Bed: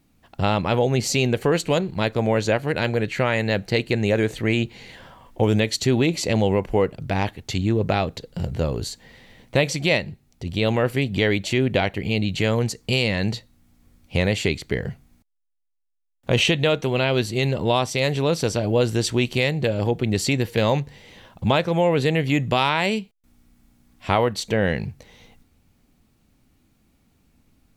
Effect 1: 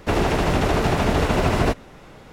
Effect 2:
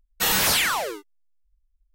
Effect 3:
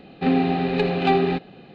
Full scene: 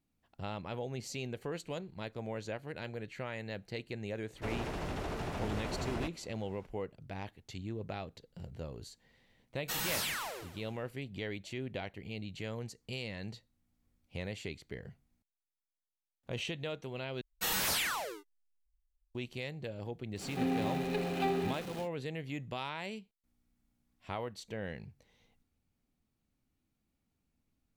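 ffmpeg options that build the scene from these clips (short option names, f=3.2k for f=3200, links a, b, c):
-filter_complex "[2:a]asplit=2[a][b];[0:a]volume=-19.5dB[c];[1:a]asoftclip=type=tanh:threshold=-12.5dB[d];[a]asplit=6[e][f][g][h][i][j];[f]adelay=135,afreqshift=-120,volume=-13dB[k];[g]adelay=270,afreqshift=-240,volume=-19.2dB[l];[h]adelay=405,afreqshift=-360,volume=-25.4dB[m];[i]adelay=540,afreqshift=-480,volume=-31.6dB[n];[j]adelay=675,afreqshift=-600,volume=-37.8dB[o];[e][k][l][m][n][o]amix=inputs=6:normalize=0[p];[3:a]aeval=exprs='val(0)+0.5*0.0501*sgn(val(0))':c=same[q];[c]asplit=2[r][s];[r]atrim=end=17.214[t];[b]atrim=end=1.94,asetpts=PTS-STARTPTS,volume=-11.5dB[u];[s]atrim=start=19.146[v];[d]atrim=end=2.32,asetpts=PTS-STARTPTS,volume=-17dB,afade=t=in:d=0.004:c=hsin,afade=t=out:st=2.316:d=0.004:c=hsin,adelay=4350[w];[p]atrim=end=1.94,asetpts=PTS-STARTPTS,volume=-15dB,afade=t=in:d=0.004:c=hsin,afade=t=out:st=1.936:d=0.004:c=hsin,adelay=9480[x];[q]atrim=end=1.74,asetpts=PTS-STARTPTS,volume=-14.5dB,afade=t=in:d=0.1,afade=t=out:st=1.64:d=0.1,adelay=20150[y];[t][u]acrossfade=d=0.004:c1=hsin:c2=hsin[z];[z][v]acrossfade=d=0.004:c1=hsin:c2=hsin[aa];[aa][w][x][y]amix=inputs=4:normalize=0"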